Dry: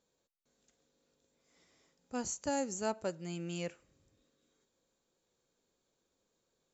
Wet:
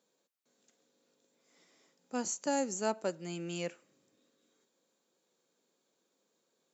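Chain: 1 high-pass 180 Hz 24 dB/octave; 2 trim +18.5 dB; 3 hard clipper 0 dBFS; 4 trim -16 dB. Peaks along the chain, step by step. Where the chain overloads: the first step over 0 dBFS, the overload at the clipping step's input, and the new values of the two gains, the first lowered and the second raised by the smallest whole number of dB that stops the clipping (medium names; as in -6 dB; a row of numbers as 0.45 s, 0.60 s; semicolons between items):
-22.0 dBFS, -3.5 dBFS, -3.5 dBFS, -19.5 dBFS; nothing clips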